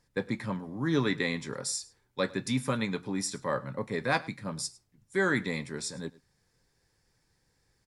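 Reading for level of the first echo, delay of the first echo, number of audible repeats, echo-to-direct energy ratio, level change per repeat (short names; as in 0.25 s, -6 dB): -21.5 dB, 0.104 s, 1, -21.5 dB, no steady repeat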